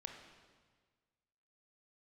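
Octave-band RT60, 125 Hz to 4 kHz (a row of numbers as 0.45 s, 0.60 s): 1.8 s, 1.6 s, 1.6 s, 1.5 s, 1.4 s, 1.4 s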